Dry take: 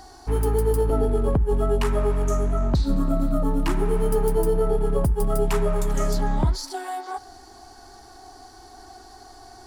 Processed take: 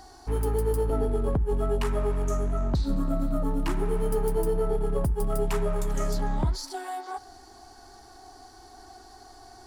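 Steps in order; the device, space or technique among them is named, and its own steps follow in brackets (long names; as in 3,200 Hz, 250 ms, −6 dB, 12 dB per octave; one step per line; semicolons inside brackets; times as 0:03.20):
parallel distortion (in parallel at −12 dB: hard clipping −25 dBFS, distortion −8 dB)
on the sum: level −5.5 dB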